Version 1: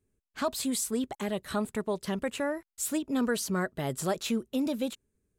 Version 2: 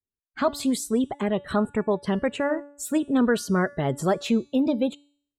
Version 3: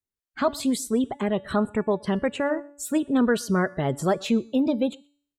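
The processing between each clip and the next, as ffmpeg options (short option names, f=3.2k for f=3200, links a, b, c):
-af "afftdn=nr=29:nf=-46,highshelf=f=4k:g=-10.5,bandreject=f=287:t=h:w=4,bandreject=f=574:t=h:w=4,bandreject=f=861:t=h:w=4,bandreject=f=1.148k:t=h:w=4,bandreject=f=1.435k:t=h:w=4,bandreject=f=1.722k:t=h:w=4,bandreject=f=2.009k:t=h:w=4,bandreject=f=2.296k:t=h:w=4,bandreject=f=2.583k:t=h:w=4,bandreject=f=2.87k:t=h:w=4,bandreject=f=3.157k:t=h:w=4,bandreject=f=3.444k:t=h:w=4,bandreject=f=3.731k:t=h:w=4,bandreject=f=4.018k:t=h:w=4,bandreject=f=4.305k:t=h:w=4,bandreject=f=4.592k:t=h:w=4,bandreject=f=4.879k:t=h:w=4,bandreject=f=5.166k:t=h:w=4,bandreject=f=5.453k:t=h:w=4,bandreject=f=5.74k:t=h:w=4,bandreject=f=6.027k:t=h:w=4,bandreject=f=6.314k:t=h:w=4,bandreject=f=6.601k:t=h:w=4,bandreject=f=6.888k:t=h:w=4,bandreject=f=7.175k:t=h:w=4,bandreject=f=7.462k:t=h:w=4,bandreject=f=7.749k:t=h:w=4,bandreject=f=8.036k:t=h:w=4,bandreject=f=8.323k:t=h:w=4,bandreject=f=8.61k:t=h:w=4,bandreject=f=8.897k:t=h:w=4,bandreject=f=9.184k:t=h:w=4,bandreject=f=9.471k:t=h:w=4,bandreject=f=9.758k:t=h:w=4,bandreject=f=10.045k:t=h:w=4,bandreject=f=10.332k:t=h:w=4,volume=7.5dB"
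-filter_complex "[0:a]asplit=2[a][b];[b]adelay=122.4,volume=-28dB,highshelf=f=4k:g=-2.76[c];[a][c]amix=inputs=2:normalize=0"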